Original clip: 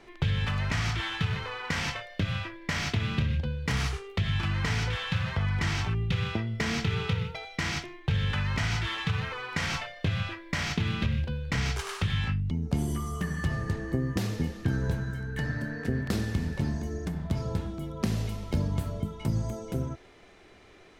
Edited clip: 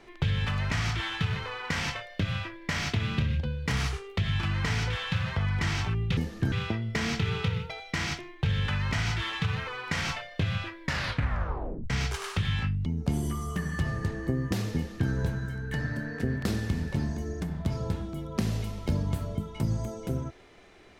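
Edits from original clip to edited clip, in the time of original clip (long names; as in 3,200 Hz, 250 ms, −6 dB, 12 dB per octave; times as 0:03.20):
0:10.48: tape stop 1.07 s
0:14.40–0:14.75: duplicate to 0:06.17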